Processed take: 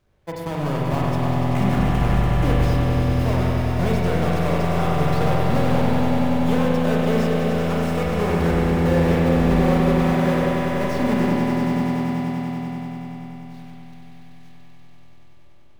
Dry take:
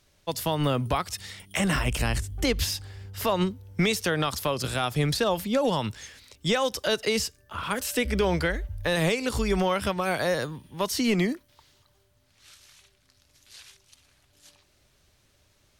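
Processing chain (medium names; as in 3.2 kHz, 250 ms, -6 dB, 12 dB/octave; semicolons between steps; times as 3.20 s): square wave that keeps the level; treble shelf 2.3 kHz -12 dB; on a send: echo with a slow build-up 96 ms, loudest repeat 5, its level -8 dB; on the sum: spring tank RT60 3.3 s, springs 36/40 ms, chirp 20 ms, DRR -3.5 dB; trim -6 dB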